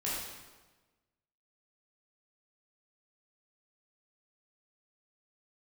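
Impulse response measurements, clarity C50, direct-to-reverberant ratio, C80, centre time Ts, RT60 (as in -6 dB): -1.0 dB, -8.0 dB, 2.0 dB, 85 ms, 1.2 s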